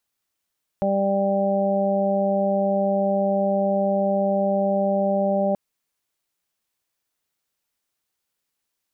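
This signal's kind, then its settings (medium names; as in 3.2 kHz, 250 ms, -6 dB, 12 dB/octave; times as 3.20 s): steady additive tone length 4.73 s, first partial 197 Hz, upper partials -7.5/3/-4 dB, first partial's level -23.5 dB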